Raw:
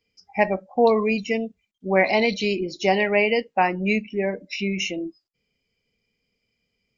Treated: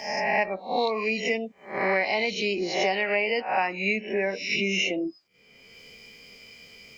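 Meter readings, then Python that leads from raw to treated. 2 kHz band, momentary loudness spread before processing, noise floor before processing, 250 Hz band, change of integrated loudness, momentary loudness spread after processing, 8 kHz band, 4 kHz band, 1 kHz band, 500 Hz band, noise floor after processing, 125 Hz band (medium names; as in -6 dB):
-0.5 dB, 9 LU, -77 dBFS, -7.0 dB, -3.5 dB, 5 LU, no reading, +1.0 dB, -3.0 dB, -5.0 dB, -58 dBFS, -8.0 dB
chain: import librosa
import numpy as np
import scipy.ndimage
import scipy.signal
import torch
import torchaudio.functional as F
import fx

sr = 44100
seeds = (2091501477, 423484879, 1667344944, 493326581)

y = fx.spec_swells(x, sr, rise_s=0.48)
y = fx.low_shelf(y, sr, hz=310.0, db=-12.0)
y = fx.band_squash(y, sr, depth_pct=100)
y = F.gain(torch.from_numpy(y), -3.5).numpy()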